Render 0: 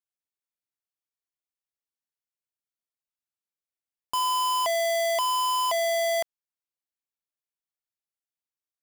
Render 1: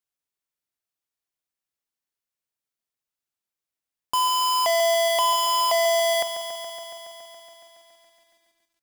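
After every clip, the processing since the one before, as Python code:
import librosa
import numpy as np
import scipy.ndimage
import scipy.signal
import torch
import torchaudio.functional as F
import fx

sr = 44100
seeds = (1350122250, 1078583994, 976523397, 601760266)

y = fx.echo_crushed(x, sr, ms=140, feedback_pct=80, bits=11, wet_db=-10.0)
y = y * 10.0 ** (4.0 / 20.0)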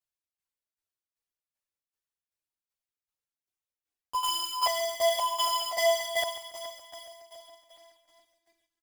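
y = fx.tremolo_shape(x, sr, shape='saw_down', hz=2.6, depth_pct=80)
y = fx.chorus_voices(y, sr, voices=6, hz=0.53, base_ms=11, depth_ms=1.9, mix_pct=65)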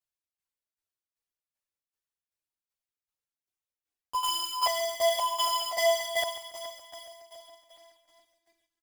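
y = x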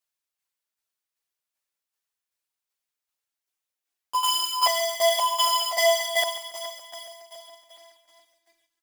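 y = fx.low_shelf(x, sr, hz=390.0, db=-11.0)
y = y * 10.0 ** (6.5 / 20.0)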